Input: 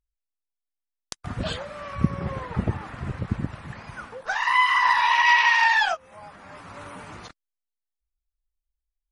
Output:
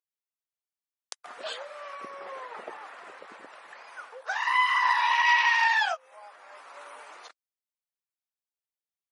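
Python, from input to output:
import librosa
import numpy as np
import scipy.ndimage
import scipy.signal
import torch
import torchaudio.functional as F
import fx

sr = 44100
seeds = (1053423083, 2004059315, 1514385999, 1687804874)

y = scipy.signal.sosfilt(scipy.signal.butter(4, 480.0, 'highpass', fs=sr, output='sos'), x)
y = y * librosa.db_to_amplitude(-4.0)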